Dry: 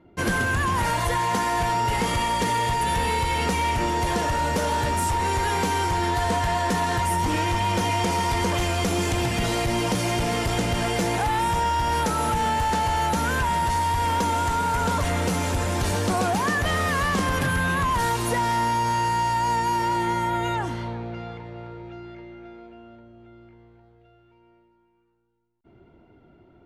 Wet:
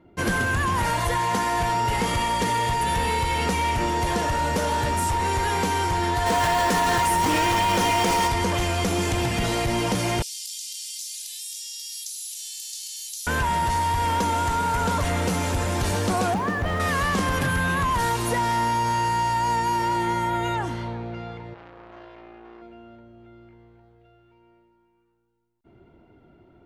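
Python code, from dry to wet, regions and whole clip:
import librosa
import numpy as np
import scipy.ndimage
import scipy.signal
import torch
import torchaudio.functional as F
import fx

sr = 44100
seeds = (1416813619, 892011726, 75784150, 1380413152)

y = fx.highpass(x, sr, hz=250.0, slope=6, at=(6.25, 8.27), fade=0.02)
y = fx.dmg_noise_colour(y, sr, seeds[0], colour='pink', level_db=-39.0, at=(6.25, 8.27), fade=0.02)
y = fx.env_flatten(y, sr, amount_pct=100, at=(6.25, 8.27), fade=0.02)
y = fx.chain(y, sr, fx.cheby2_highpass(hz=1300.0, order=4, stop_db=60),
    fx.env_flatten(amount_pct=70), at=(10.22, 13.27))
y = fx.chain(y, sr, fx.crossing_spikes(level_db=-28.5),
    fx.lowpass(hz=1300.0, slope=6), at=(16.34, 16.8))
y = fx.chain(y, sr, fx.peak_eq(hz=130.0, db=-9.5, octaves=0.24),
    fx.room_flutter(wall_m=9.3, rt60_s=0.29),
    fx.transformer_sat(knee_hz=1300.0), at=(21.54, 22.62))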